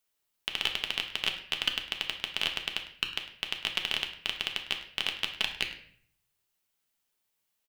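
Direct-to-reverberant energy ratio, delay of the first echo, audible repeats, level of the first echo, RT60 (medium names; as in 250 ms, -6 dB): 3.0 dB, 103 ms, 1, -16.5 dB, 0.55 s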